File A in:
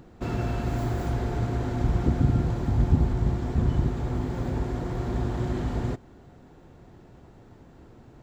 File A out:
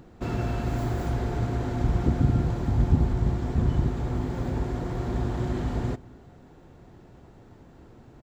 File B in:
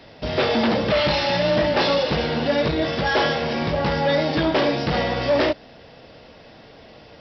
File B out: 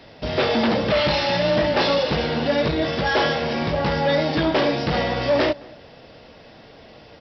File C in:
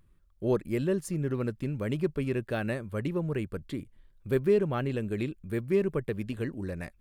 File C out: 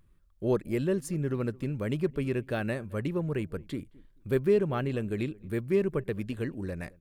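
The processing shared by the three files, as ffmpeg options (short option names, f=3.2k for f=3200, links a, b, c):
-filter_complex "[0:a]asplit=2[a][b];[b]adelay=218,lowpass=f=1.3k:p=1,volume=-22.5dB,asplit=2[c][d];[d]adelay=218,lowpass=f=1.3k:p=1,volume=0.23[e];[a][c][e]amix=inputs=3:normalize=0"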